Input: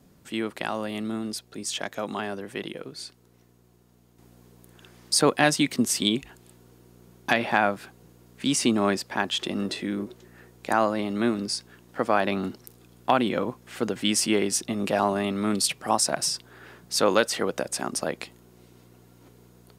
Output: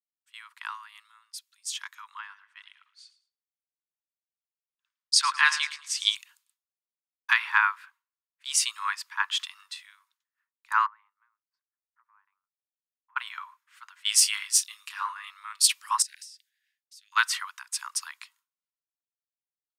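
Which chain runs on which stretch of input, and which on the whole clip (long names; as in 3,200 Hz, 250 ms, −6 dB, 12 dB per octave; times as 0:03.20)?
0:02.19–0:06.15: low-pass filter 6,500 Hz + repeating echo 109 ms, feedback 49%, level −13 dB
0:10.86–0:13.16: low-pass filter 1,200 Hz + parametric band 140 Hz +10 dB 0.7 octaves + downward compressor 3 to 1, threshold −40 dBFS
0:14.09–0:15.29: high-pass filter 950 Hz + hard clipping −14.5 dBFS + double-tracking delay 28 ms −8 dB
0:16.02–0:17.12: Chebyshev band-stop filter 300–1,800 Hz, order 4 + downward compressor 12 to 1, threshold −36 dBFS
whole clip: Butterworth high-pass 960 Hz 96 dB per octave; downward expander −53 dBFS; multiband upward and downward expander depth 100%; level −3.5 dB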